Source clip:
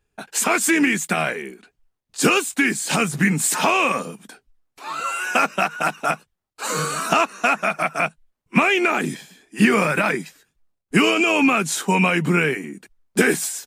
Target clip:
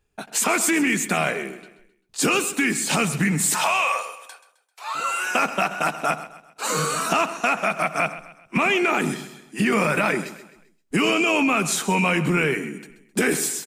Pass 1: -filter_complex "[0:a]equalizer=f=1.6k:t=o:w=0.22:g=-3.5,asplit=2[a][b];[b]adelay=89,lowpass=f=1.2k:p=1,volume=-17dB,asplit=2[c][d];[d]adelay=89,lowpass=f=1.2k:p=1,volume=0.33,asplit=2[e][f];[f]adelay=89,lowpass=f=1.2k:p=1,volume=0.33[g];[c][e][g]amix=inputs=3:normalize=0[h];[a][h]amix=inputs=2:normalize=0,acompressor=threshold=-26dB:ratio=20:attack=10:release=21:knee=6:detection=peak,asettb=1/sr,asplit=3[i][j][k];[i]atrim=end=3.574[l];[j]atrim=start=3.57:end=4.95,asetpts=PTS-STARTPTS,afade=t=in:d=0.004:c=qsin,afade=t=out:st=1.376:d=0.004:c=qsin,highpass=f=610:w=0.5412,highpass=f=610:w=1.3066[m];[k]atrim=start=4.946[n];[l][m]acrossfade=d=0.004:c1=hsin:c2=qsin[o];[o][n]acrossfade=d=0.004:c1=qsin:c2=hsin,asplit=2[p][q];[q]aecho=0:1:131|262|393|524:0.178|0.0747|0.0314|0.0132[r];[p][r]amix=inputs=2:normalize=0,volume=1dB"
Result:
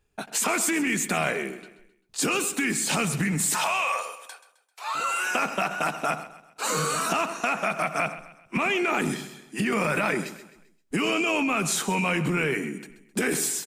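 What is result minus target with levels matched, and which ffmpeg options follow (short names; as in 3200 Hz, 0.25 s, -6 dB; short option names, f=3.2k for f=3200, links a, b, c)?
compressor: peak gain reduction +5.5 dB
-filter_complex "[0:a]equalizer=f=1.6k:t=o:w=0.22:g=-3.5,asplit=2[a][b];[b]adelay=89,lowpass=f=1.2k:p=1,volume=-17dB,asplit=2[c][d];[d]adelay=89,lowpass=f=1.2k:p=1,volume=0.33,asplit=2[e][f];[f]adelay=89,lowpass=f=1.2k:p=1,volume=0.33[g];[c][e][g]amix=inputs=3:normalize=0[h];[a][h]amix=inputs=2:normalize=0,acompressor=threshold=-20dB:ratio=20:attack=10:release=21:knee=6:detection=peak,asettb=1/sr,asplit=3[i][j][k];[i]atrim=end=3.574[l];[j]atrim=start=3.57:end=4.95,asetpts=PTS-STARTPTS,afade=t=in:d=0.004:c=qsin,afade=t=out:st=1.376:d=0.004:c=qsin,highpass=f=610:w=0.5412,highpass=f=610:w=1.3066[m];[k]atrim=start=4.946[n];[l][m]acrossfade=d=0.004:c1=hsin:c2=qsin[o];[o][n]acrossfade=d=0.004:c1=qsin:c2=hsin,asplit=2[p][q];[q]aecho=0:1:131|262|393|524:0.178|0.0747|0.0314|0.0132[r];[p][r]amix=inputs=2:normalize=0,volume=1dB"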